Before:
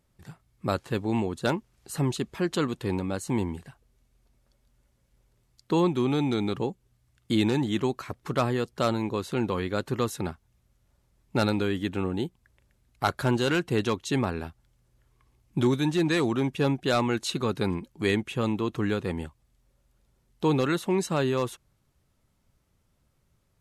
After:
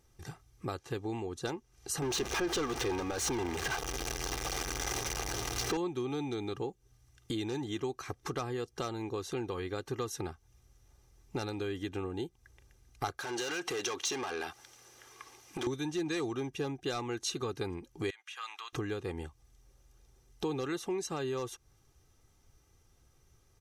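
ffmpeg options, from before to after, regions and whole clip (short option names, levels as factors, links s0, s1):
-filter_complex "[0:a]asettb=1/sr,asplit=3[s0][s1][s2];[s0]atrim=end=2.024[s3];[s1]atrim=start=2.02:end=5.77,asetpts=PTS-STARTPTS,afade=t=in:d=0.004:c=qsin,afade=t=out:st=3.746:d=0.004:c=qsin,aeval=exprs='val(0)+0.5*0.0335*sgn(val(0))':c=same,asplit=2[s4][s5];[s5]highpass=f=720:p=1,volume=12.6,asoftclip=type=tanh:threshold=0.211[s6];[s4][s6]amix=inputs=2:normalize=0,lowpass=f=3300:p=1,volume=0.501,aeval=exprs='val(0)+0.00891*(sin(2*PI*60*n/s)+sin(2*PI*2*60*n/s)/2+sin(2*PI*3*60*n/s)/3+sin(2*PI*4*60*n/s)/4+sin(2*PI*5*60*n/s)/5)':c=same[s7];[s2]atrim=start=5.766[s8];[s3][s7]acrossfade=d=0.004:c1=hsin:c2=qsin[s9];[s9][s8]acrossfade=d=0.004:c1=qsin:c2=hsin,asettb=1/sr,asplit=3[s10][s11][s12];[s10]atrim=end=13.194[s13];[s11]atrim=start=13.19:end=15.67,asetpts=PTS-STARTPTS,afade=t=in:d=0.004:c=qsin,afade=t=out:st=2.476:d=0.004:c=qsin,asplit=2[s14][s15];[s15]highpass=f=720:p=1,volume=14.1,asoftclip=type=tanh:threshold=0.224[s16];[s14][s16]amix=inputs=2:normalize=0,lowpass=f=7100:p=1,volume=0.501,highpass=f=270:p=1,acompressor=threshold=0.0282:ratio=12:attack=3.2:release=140:knee=1:detection=peak[s17];[s12]atrim=start=15.666[s18];[s13][s17]acrossfade=d=0.004:c1=hsin:c2=qsin[s19];[s19][s18]acrossfade=d=0.004:c1=qsin:c2=hsin,asettb=1/sr,asplit=3[s20][s21][s22];[s20]atrim=end=18.104[s23];[s21]atrim=start=18.1:end=18.73,asetpts=PTS-STARTPTS,afade=t=in:d=0.004:c=qsin,afade=t=out:st=0.626:d=0.004:c=qsin,highpass=f=1200:w=0.5412,highpass=f=1200:w=1.3066,highshelf=f=6000:g=-9.5,acompressor=threshold=0.00794:ratio=2.5:attack=3.2:release=140:knee=1:detection=peak[s24];[s22]atrim=start=18.726[s25];[s23][s24]acrossfade=d=0.004:c1=hsin:c2=qsin[s26];[s26][s25]acrossfade=d=0.004:c1=qsin:c2=hsin,acompressor=threshold=0.0126:ratio=4,equalizer=f=5900:t=o:w=0.23:g=11.5,aecho=1:1:2.5:0.56,volume=1.26"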